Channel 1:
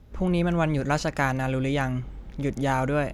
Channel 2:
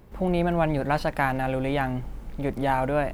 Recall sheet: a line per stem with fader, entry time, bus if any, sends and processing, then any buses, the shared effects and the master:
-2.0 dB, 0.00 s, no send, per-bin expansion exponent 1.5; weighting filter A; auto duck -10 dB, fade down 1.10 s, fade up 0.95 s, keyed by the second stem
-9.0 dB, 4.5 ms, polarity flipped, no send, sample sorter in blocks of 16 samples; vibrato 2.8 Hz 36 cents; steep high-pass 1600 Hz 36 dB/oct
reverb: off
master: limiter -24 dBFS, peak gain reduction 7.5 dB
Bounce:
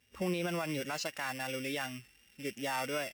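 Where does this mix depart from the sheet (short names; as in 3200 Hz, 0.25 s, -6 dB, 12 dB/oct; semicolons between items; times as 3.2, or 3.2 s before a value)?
stem 1 -2.0 dB -> +6.5 dB; stem 2: polarity flipped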